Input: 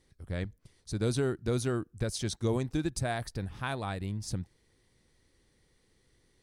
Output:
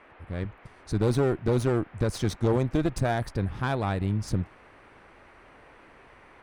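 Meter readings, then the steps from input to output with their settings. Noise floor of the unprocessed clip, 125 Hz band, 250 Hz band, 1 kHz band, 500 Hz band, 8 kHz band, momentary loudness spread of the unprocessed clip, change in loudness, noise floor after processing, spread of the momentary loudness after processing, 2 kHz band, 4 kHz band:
−70 dBFS, +6.5 dB, +6.0 dB, +7.0 dB, +6.5 dB, −2.5 dB, 9 LU, +6.0 dB, −54 dBFS, 11 LU, +4.0 dB, 0.0 dB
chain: asymmetric clip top −38 dBFS, bottom −22.5 dBFS
automatic gain control gain up to 9 dB
noise in a band 240–2,400 Hz −52 dBFS
high-shelf EQ 2,700 Hz −11 dB

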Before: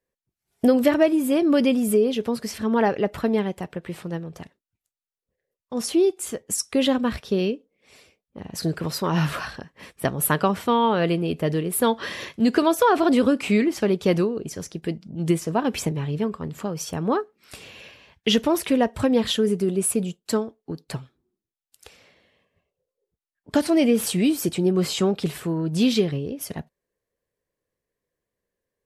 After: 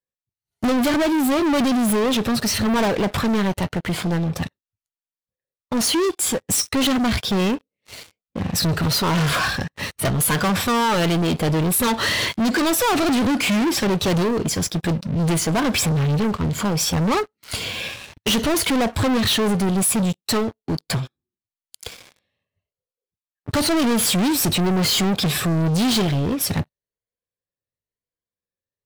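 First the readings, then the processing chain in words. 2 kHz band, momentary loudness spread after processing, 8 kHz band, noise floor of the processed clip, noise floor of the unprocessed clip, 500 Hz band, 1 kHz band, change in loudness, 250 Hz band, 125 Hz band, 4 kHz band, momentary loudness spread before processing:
+7.0 dB, 8 LU, +8.0 dB, below −85 dBFS, below −85 dBFS, −1.5 dB, +3.0 dB, +2.5 dB, +2.0 dB, +6.5 dB, +8.0 dB, 14 LU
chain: rippled gain that drifts along the octave scale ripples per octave 1.8, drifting +0.95 Hz, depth 7 dB
graphic EQ with 15 bands 100 Hz +8 dB, 400 Hz −4 dB, 4,000 Hz +5 dB
soft clipping −12 dBFS, distortion −20 dB
leveller curve on the samples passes 5
level −4 dB

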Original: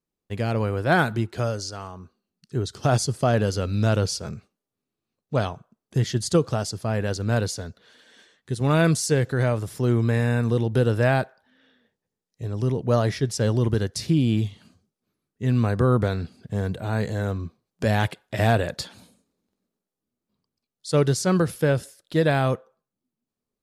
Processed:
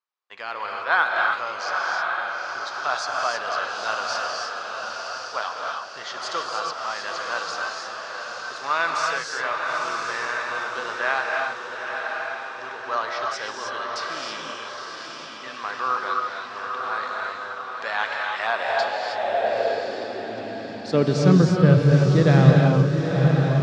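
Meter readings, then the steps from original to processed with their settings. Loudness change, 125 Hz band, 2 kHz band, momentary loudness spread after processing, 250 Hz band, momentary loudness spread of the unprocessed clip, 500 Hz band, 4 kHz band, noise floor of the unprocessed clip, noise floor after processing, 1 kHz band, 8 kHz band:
0.0 dB, 0.0 dB, +7.0 dB, 15 LU, 0.0 dB, 11 LU, −1.0 dB, +3.0 dB, below −85 dBFS, −36 dBFS, +6.5 dB, −5.0 dB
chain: low-pass filter 5,500 Hz 24 dB per octave
on a send: feedback delay with all-pass diffusion 910 ms, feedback 50%, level −4 dB
on the sum: reverb whose tail is shaped and stops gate 340 ms rising, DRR 0.5 dB
high-pass filter sweep 1,100 Hz → 130 Hz, 0:18.44–0:21.78
level −1.5 dB

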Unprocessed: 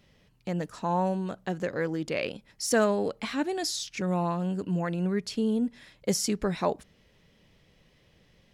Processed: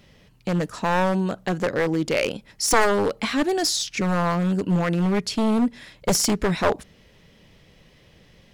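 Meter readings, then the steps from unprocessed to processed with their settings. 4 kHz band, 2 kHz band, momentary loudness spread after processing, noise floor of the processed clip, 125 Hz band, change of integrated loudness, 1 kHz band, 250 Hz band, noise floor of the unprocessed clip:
+8.5 dB, +9.0 dB, 6 LU, −55 dBFS, +6.5 dB, +6.5 dB, +7.5 dB, +6.0 dB, −64 dBFS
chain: wavefolder on the positive side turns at −24 dBFS
level +8.5 dB

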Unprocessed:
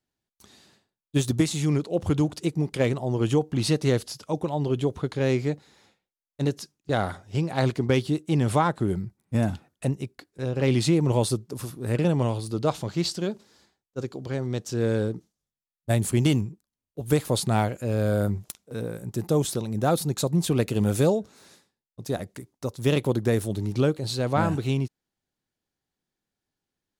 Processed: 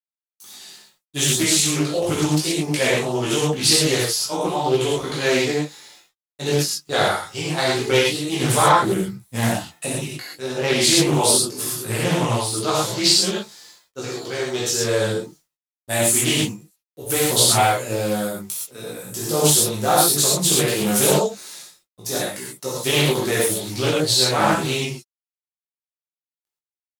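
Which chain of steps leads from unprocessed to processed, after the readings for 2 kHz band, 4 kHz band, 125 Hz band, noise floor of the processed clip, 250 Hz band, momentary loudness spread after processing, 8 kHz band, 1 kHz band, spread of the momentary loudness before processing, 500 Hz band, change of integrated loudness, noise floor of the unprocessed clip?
+11.5 dB, +15.5 dB, −1.0 dB, below −85 dBFS, +1.5 dB, 14 LU, +17.5 dB, +9.5 dB, 11 LU, +5.0 dB, +7.0 dB, below −85 dBFS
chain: spectral tilt +3.5 dB per octave
automatic gain control gain up to 7 dB
bit reduction 10 bits
multi-voice chorus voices 2, 0.23 Hz, delay 18 ms, depth 2.9 ms
reverb whose tail is shaped and stops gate 150 ms flat, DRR −6 dB
highs frequency-modulated by the lows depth 0.32 ms
level −1 dB

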